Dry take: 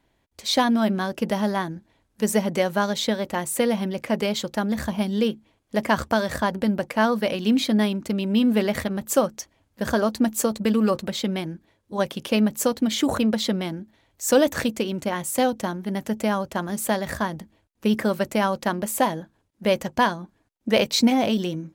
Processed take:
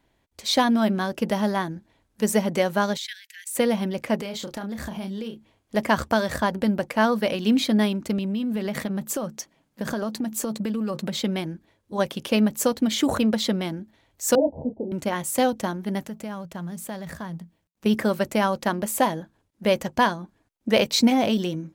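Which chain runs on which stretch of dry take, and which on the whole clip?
0:02.97–0:03.55: output level in coarse steps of 11 dB + Butterworth high-pass 1,600 Hz 96 dB per octave
0:04.16–0:05.75: double-tracking delay 31 ms −8 dB + downward compressor, threshold −29 dBFS
0:08.18–0:11.21: low shelf with overshoot 120 Hz −8.5 dB, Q 3 + downward compressor 12 to 1, threshold −23 dBFS
0:14.35–0:14.92: Butterworth low-pass 890 Hz 96 dB per octave + micro pitch shift up and down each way 42 cents
0:16.05–0:17.86: mu-law and A-law mismatch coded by A + parametric band 170 Hz +14.5 dB 0.28 octaves + downward compressor 2 to 1, threshold −39 dBFS
whole clip: no processing

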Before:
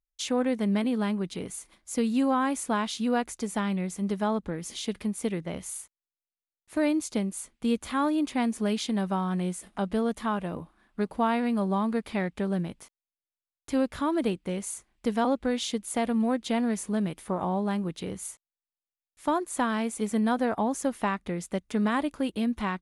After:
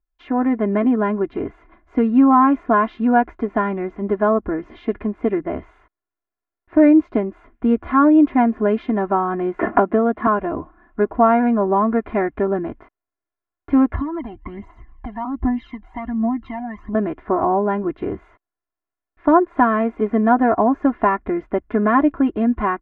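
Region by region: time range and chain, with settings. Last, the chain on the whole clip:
0:09.59–0:10.27: band-pass filter 120–4,200 Hz + multiband upward and downward compressor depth 100%
0:13.94–0:16.95: comb filter 1 ms, depth 87% + downward compressor 3 to 1, threshold −40 dBFS + phase shifter 1.3 Hz, delay 1.4 ms, feedback 68%
whole clip: low-pass filter 1,700 Hz 24 dB per octave; comb filter 2.9 ms, depth 80%; automatic gain control gain up to 4 dB; level +6 dB

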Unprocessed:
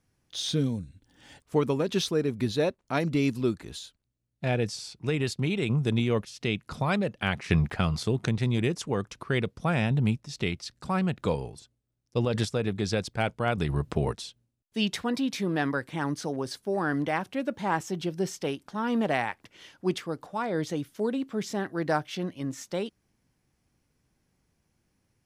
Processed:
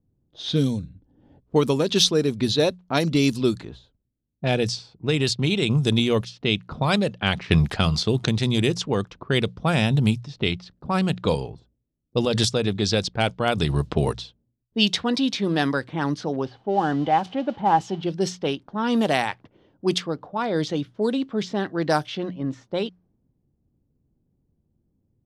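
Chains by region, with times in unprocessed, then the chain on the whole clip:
0:16.45–0:18.03: spike at every zero crossing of −27.5 dBFS + head-to-tape spacing loss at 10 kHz 35 dB + hollow resonant body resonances 800/3,000 Hz, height 12 dB, ringing for 30 ms
whole clip: low-pass that shuts in the quiet parts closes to 360 Hz, open at −22 dBFS; high shelf with overshoot 2,800 Hz +6.5 dB, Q 1.5; mains-hum notches 60/120/180 Hz; level +5.5 dB

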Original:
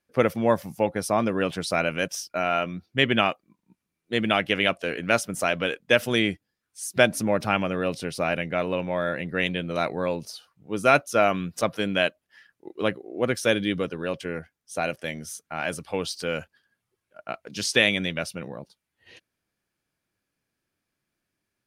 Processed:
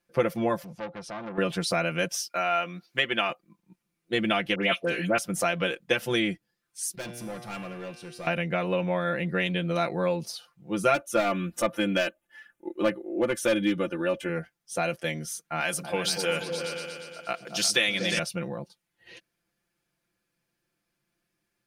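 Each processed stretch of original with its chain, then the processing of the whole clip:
0:00.64–0:01.38: low-pass filter 4,300 Hz + downward compressor 2 to 1, threshold −39 dBFS + saturating transformer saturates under 1,400 Hz
0:02.20–0:03.30: high-pass filter 520 Hz 6 dB per octave + one half of a high-frequency compander encoder only
0:04.55–0:05.18: high-pass filter 100 Hz + all-pass dispersion highs, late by 81 ms, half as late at 1,900 Hz
0:06.95–0:08.27: tuned comb filter 120 Hz, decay 1.5 s, mix 80% + gain into a clipping stage and back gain 34 dB
0:10.94–0:14.29: parametric band 4,700 Hz −11.5 dB 0.6 octaves + comb filter 3.4 ms, depth 62% + hard clipping −15 dBFS
0:15.60–0:18.19: spectral tilt +2 dB per octave + echo whose low-pass opens from repeat to repeat 118 ms, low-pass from 200 Hz, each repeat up 2 octaves, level −3 dB
whole clip: downward compressor 2.5 to 1, threshold −25 dBFS; comb filter 5.8 ms, depth 74%

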